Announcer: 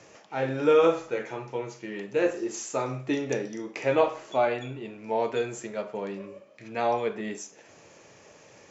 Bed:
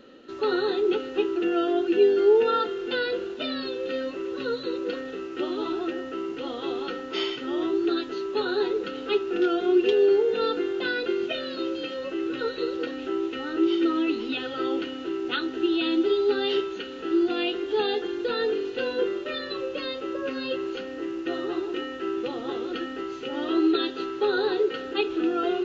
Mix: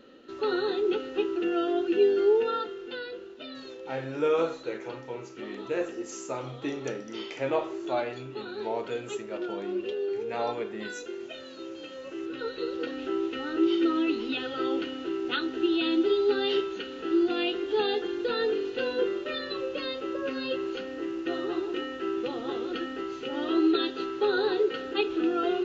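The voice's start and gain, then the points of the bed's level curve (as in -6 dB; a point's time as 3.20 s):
3.55 s, -5.5 dB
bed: 2.22 s -3 dB
3.13 s -11.5 dB
11.58 s -11.5 dB
13.00 s -1.5 dB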